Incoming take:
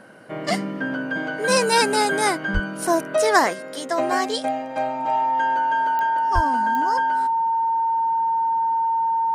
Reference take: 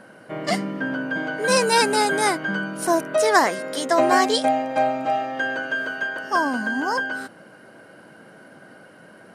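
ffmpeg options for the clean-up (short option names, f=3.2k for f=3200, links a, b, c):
-filter_complex "[0:a]adeclick=t=4,bandreject=f=910:w=30,asplit=3[a][b][c];[a]afade=t=out:st=2.53:d=0.02[d];[b]highpass=f=140:w=0.5412,highpass=f=140:w=1.3066,afade=t=in:st=2.53:d=0.02,afade=t=out:st=2.65:d=0.02[e];[c]afade=t=in:st=2.65:d=0.02[f];[d][e][f]amix=inputs=3:normalize=0,asplit=3[g][h][i];[g]afade=t=out:st=6.34:d=0.02[j];[h]highpass=f=140:w=0.5412,highpass=f=140:w=1.3066,afade=t=in:st=6.34:d=0.02,afade=t=out:st=6.46:d=0.02[k];[i]afade=t=in:st=6.46:d=0.02[l];[j][k][l]amix=inputs=3:normalize=0,asetnsamples=n=441:p=0,asendcmd='3.53 volume volume 4.5dB',volume=0dB"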